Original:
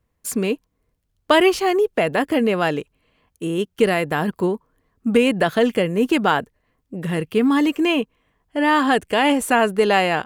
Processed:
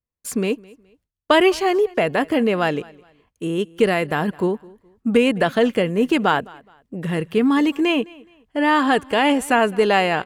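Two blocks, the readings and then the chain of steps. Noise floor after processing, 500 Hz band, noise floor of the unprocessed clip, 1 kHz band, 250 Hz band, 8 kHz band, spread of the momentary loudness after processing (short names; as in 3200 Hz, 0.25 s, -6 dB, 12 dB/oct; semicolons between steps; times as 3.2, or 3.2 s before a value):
-77 dBFS, 0.0 dB, -72 dBFS, 0.0 dB, 0.0 dB, -2.5 dB, 11 LU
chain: high shelf 11000 Hz -8 dB; on a send: feedback echo 0.21 s, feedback 30%, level -23.5 dB; on the sum: gate with hold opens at -47 dBFS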